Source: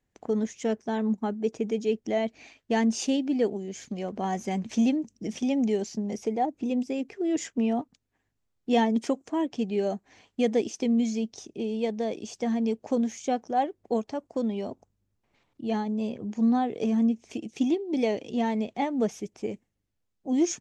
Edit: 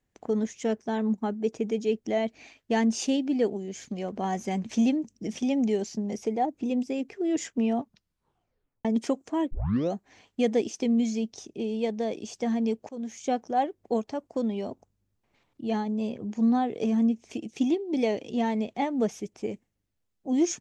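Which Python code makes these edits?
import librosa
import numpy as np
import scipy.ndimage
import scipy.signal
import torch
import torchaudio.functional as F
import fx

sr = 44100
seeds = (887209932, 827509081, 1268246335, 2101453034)

y = fx.edit(x, sr, fx.tape_stop(start_s=7.76, length_s=1.09),
    fx.tape_start(start_s=9.51, length_s=0.41),
    fx.fade_in_from(start_s=12.89, length_s=0.39, floor_db=-22.5), tone=tone)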